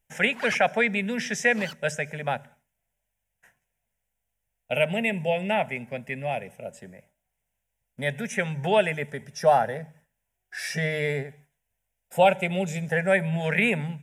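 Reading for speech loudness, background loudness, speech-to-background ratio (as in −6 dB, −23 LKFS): −25.5 LKFS, −41.5 LKFS, 16.0 dB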